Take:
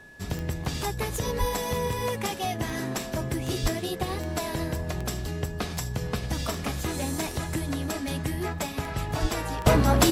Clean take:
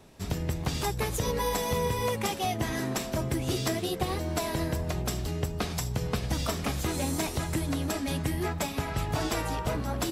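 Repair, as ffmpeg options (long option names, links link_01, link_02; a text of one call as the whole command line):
ffmpeg -i in.wav -filter_complex "[0:a]adeclick=threshold=4,bandreject=frequency=1700:width=30,asplit=3[link_01][link_02][link_03];[link_01]afade=type=out:start_time=1.39:duration=0.02[link_04];[link_02]highpass=frequency=140:width=0.5412,highpass=frequency=140:width=1.3066,afade=type=in:start_time=1.39:duration=0.02,afade=type=out:start_time=1.51:duration=0.02[link_05];[link_03]afade=type=in:start_time=1.51:duration=0.02[link_06];[link_04][link_05][link_06]amix=inputs=3:normalize=0,asplit=3[link_07][link_08][link_09];[link_07]afade=type=out:start_time=3.62:duration=0.02[link_10];[link_08]highpass=frequency=140:width=0.5412,highpass=frequency=140:width=1.3066,afade=type=in:start_time=3.62:duration=0.02,afade=type=out:start_time=3.74:duration=0.02[link_11];[link_09]afade=type=in:start_time=3.74:duration=0.02[link_12];[link_10][link_11][link_12]amix=inputs=3:normalize=0,asplit=3[link_13][link_14][link_15];[link_13]afade=type=out:start_time=9.21:duration=0.02[link_16];[link_14]highpass=frequency=140:width=0.5412,highpass=frequency=140:width=1.3066,afade=type=in:start_time=9.21:duration=0.02,afade=type=out:start_time=9.33:duration=0.02[link_17];[link_15]afade=type=in:start_time=9.33:duration=0.02[link_18];[link_16][link_17][link_18]amix=inputs=3:normalize=0,asetnsamples=nb_out_samples=441:pad=0,asendcmd='9.66 volume volume -11dB',volume=0dB" out.wav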